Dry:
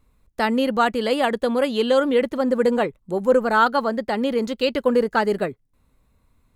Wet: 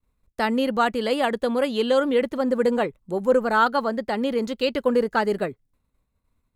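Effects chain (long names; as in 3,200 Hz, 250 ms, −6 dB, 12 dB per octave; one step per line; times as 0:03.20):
downward expander −53 dBFS
level −2 dB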